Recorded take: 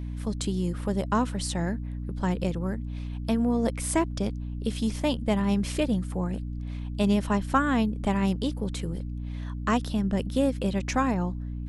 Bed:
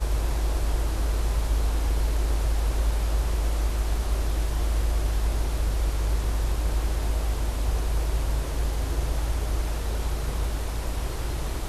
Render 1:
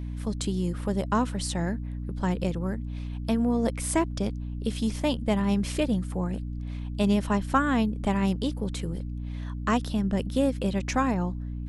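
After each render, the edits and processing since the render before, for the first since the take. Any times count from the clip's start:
no processing that can be heard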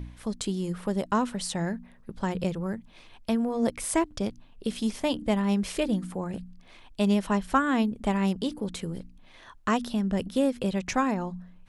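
hum removal 60 Hz, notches 5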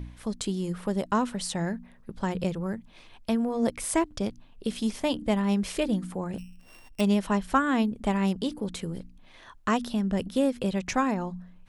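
0:06.38–0:07.01: samples sorted by size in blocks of 16 samples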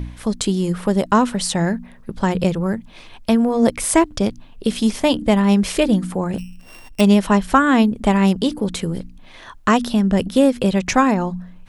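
level +10.5 dB
brickwall limiter −2 dBFS, peak gain reduction 2 dB

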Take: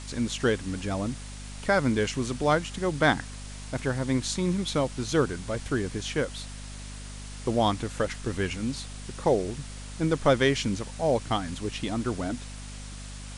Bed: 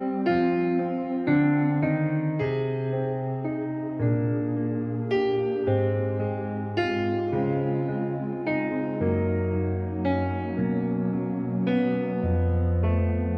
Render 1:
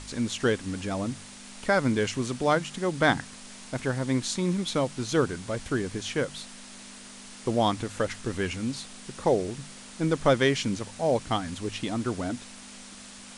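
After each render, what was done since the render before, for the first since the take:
hum removal 50 Hz, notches 3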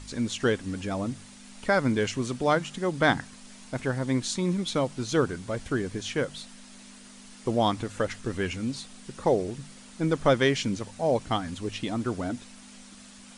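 broadband denoise 6 dB, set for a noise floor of −46 dBFS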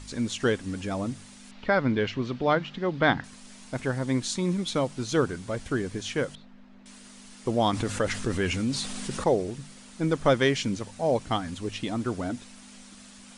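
0:01.51–0:03.24: low-pass filter 4,300 Hz 24 dB per octave
0:06.35–0:06.86: head-to-tape spacing loss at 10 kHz 45 dB
0:07.73–0:09.24: envelope flattener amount 50%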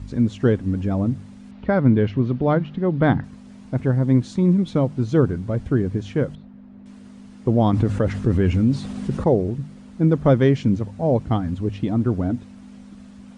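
high-pass filter 80 Hz
spectral tilt −4.5 dB per octave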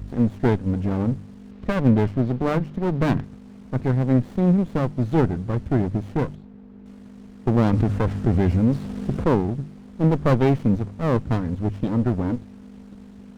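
windowed peak hold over 33 samples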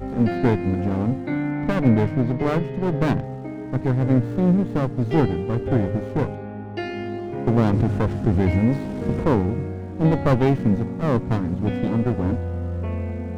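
mix in bed −3.5 dB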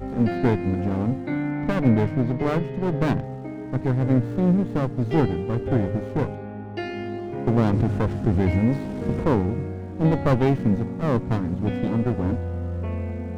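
level −1.5 dB

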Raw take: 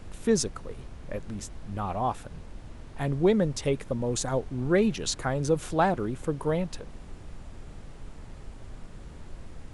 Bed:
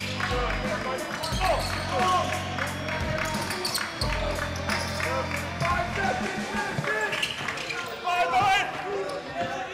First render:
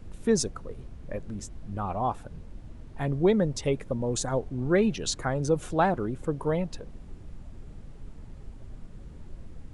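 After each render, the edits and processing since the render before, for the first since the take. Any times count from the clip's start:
broadband denoise 8 dB, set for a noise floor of −45 dBFS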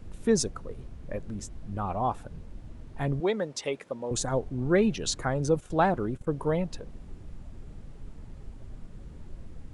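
0:03.20–0:04.11: meter weighting curve A
0:05.56–0:06.27: noise gate −37 dBFS, range −13 dB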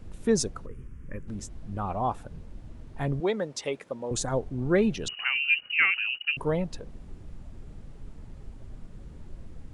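0:00.66–0:01.28: phaser with its sweep stopped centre 1,700 Hz, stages 4
0:05.08–0:06.37: voice inversion scrambler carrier 2,900 Hz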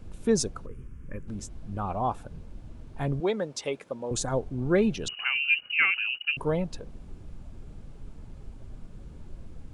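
notch filter 1,900 Hz, Q 12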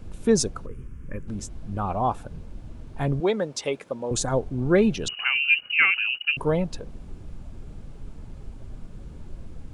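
level +4 dB

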